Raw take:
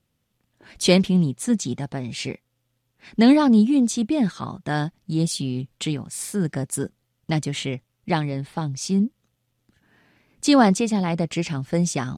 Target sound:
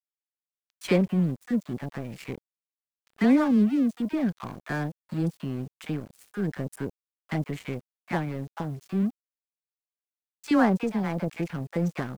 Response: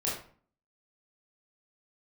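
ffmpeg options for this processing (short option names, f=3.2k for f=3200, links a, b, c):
-filter_complex "[0:a]highshelf=f=2.7k:t=q:w=1.5:g=-10,asplit=2[a][b];[b]acompressor=threshold=-31dB:ratio=5,volume=-1.5dB[c];[a][c]amix=inputs=2:normalize=0,aeval=exprs='sgn(val(0))*max(abs(val(0))-0.0251,0)':c=same,acrossover=split=850[d][e];[d]adelay=30[f];[f][e]amix=inputs=2:normalize=0,acrusher=bits=8:mix=0:aa=0.000001,volume=-5.5dB"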